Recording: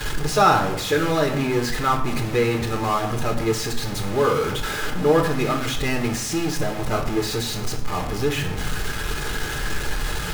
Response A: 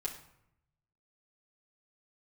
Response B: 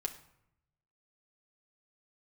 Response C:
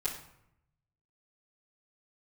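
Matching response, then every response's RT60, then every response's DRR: C; 0.75, 0.75, 0.75 s; -2.5, 3.5, -10.5 dB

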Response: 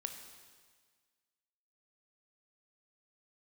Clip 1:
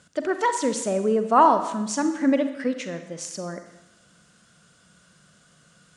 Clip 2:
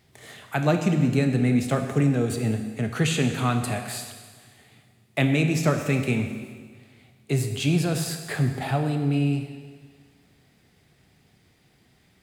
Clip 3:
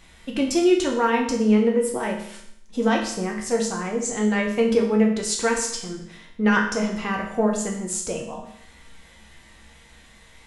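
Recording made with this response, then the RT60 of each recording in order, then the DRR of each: 2; 1.0, 1.6, 0.70 s; 8.0, 5.5, -1.0 dB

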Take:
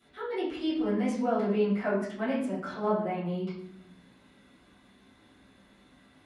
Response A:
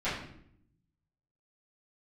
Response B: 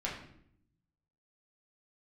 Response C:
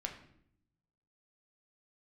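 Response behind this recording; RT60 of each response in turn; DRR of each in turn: A; 0.70, 0.70, 0.70 s; -14.5, -5.0, 2.0 dB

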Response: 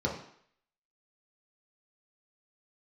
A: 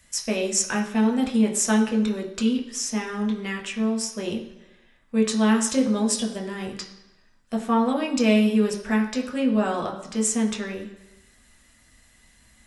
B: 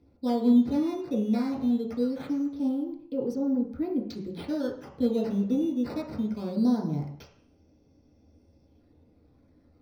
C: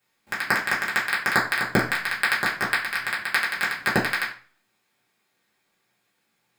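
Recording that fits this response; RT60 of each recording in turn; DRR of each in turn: B; 1.0, 0.60, 0.40 s; 0.5, -3.5, -7.5 dB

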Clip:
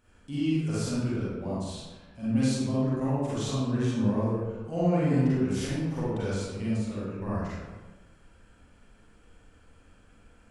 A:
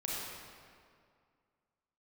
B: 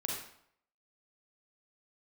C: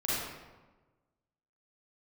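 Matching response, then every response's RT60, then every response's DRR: C; 2.2, 0.65, 1.2 s; -5.5, -2.0, -9.5 dB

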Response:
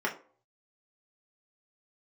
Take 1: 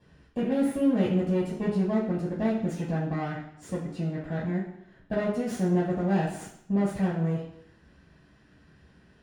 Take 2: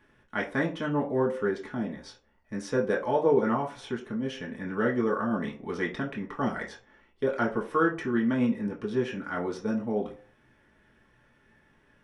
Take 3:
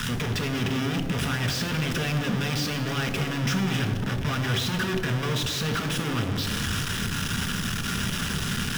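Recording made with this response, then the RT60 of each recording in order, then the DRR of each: 2; 0.70, 0.45, 1.9 s; -7.5, -3.0, 4.5 dB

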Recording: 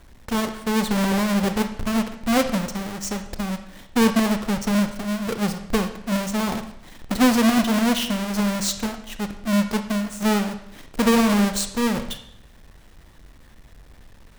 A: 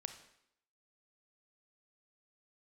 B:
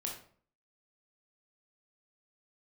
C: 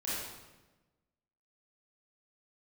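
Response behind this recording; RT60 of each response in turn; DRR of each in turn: A; 0.75, 0.50, 1.1 s; 8.0, -1.0, -9.5 dB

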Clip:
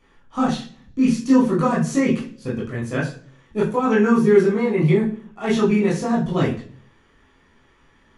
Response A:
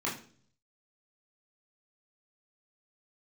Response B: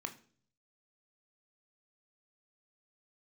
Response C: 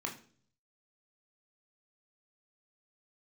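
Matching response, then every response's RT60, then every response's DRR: A; 0.45, 0.45, 0.45 s; -5.5, 6.5, 1.0 dB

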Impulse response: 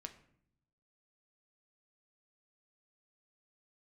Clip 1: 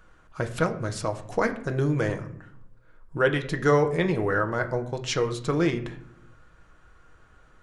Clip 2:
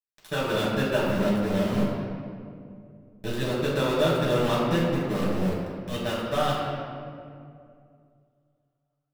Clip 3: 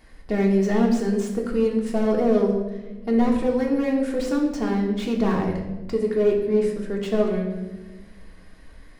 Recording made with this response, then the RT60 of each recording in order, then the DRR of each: 1; 0.65, 2.3, 1.2 s; 5.0, -7.5, -0.5 dB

